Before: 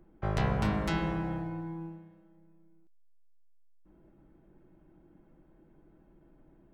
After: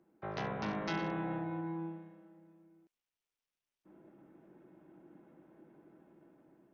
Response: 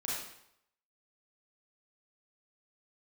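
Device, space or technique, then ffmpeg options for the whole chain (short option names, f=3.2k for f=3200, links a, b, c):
Bluetooth headset: -af "highpass=210,dynaudnorm=f=560:g=5:m=10dB,aresample=16000,aresample=44100,volume=-6dB" -ar 48000 -c:a sbc -b:a 64k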